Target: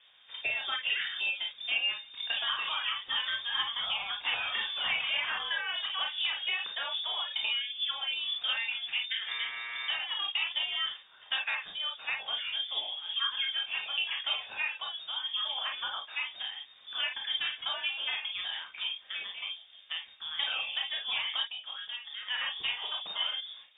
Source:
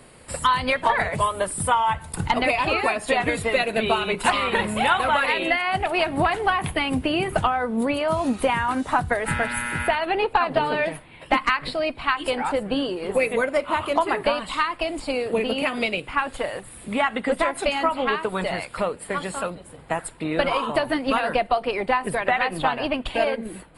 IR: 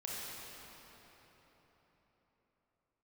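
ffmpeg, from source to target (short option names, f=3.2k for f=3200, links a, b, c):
-filter_complex "[0:a]asplit=3[a][b][c];[a]afade=t=out:st=21.43:d=0.02[d];[b]acompressor=threshold=-27dB:ratio=6,afade=t=in:st=21.43:d=0.02,afade=t=out:st=22.29:d=0.02[e];[c]afade=t=in:st=22.29:d=0.02[f];[d][e][f]amix=inputs=3:normalize=0,lowpass=f=3.1k:t=q:w=0.5098,lowpass=f=3.1k:t=q:w=0.6013,lowpass=f=3.1k:t=q:w=0.9,lowpass=f=3.1k:t=q:w=2.563,afreqshift=-3700,asettb=1/sr,asplit=3[g][h][i];[g]atrim=end=14.474[j];[h]atrim=start=14.47:end=16.14,asetpts=PTS-STARTPTS,afade=t=in:d=0.004:c=qsin,afade=t=out:st=1.666:d=0.004:c=qsin,highpass=f=140:p=1[k];[i]atrim=start=16.136[l];[j][k]acrossfade=d=0.004:c1=hsin:c2=qsin[m];[m][l]acrossfade=d=0.004:c1=qsin:c2=hsin[n];[1:a]atrim=start_sample=2205,atrim=end_sample=3087,asetrate=52920,aresample=44100[o];[n][o]afir=irnorm=-1:irlink=0,volume=-6dB"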